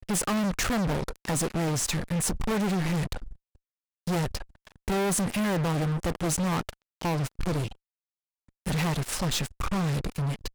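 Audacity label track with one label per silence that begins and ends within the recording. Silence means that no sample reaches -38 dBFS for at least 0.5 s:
3.330000	4.070000	silence
7.720000	8.660000	silence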